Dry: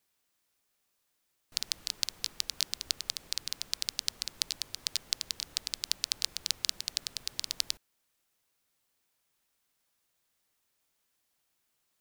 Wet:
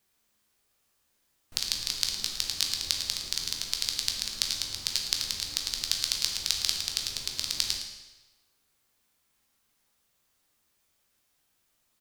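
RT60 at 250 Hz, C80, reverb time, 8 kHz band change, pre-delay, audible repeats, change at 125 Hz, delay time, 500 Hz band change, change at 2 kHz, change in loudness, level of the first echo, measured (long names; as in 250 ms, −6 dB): 1.0 s, 6.0 dB, 1.1 s, +5.0 dB, 13 ms, 1, +9.0 dB, 111 ms, +5.0 dB, +5.0 dB, +5.0 dB, −11.5 dB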